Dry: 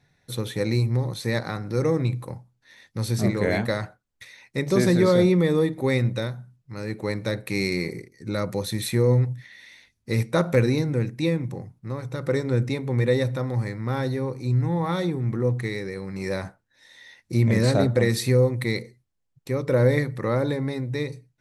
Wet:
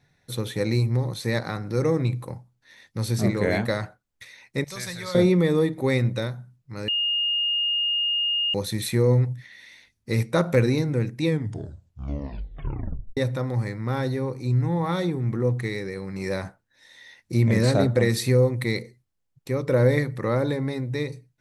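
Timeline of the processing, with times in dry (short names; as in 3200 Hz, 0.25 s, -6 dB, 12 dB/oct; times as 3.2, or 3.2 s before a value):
4.64–5.15 passive tone stack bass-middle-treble 10-0-10
6.88–8.54 bleep 2840 Hz -21 dBFS
11.25 tape stop 1.92 s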